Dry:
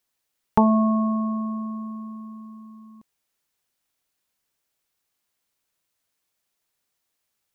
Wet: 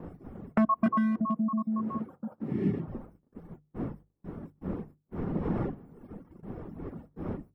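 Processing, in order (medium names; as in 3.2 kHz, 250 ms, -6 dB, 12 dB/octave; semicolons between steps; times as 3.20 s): random holes in the spectrogram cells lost 56%; wind noise 190 Hz -33 dBFS; 0.86–2.88 s: high-pass 110 Hz 24 dB/octave; hard clipper -20.5 dBFS, distortion -11 dB; compression 2.5:1, threshold -31 dBFS, peak gain reduction 6.5 dB; 2.12–2.98 s: spectral replace 450–1700 Hz after; gate -46 dBFS, range -24 dB; reverberation RT60 0.25 s, pre-delay 3 ms, DRR 16.5 dB; reverb removal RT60 1.1 s; hum notches 50/100/150 Hz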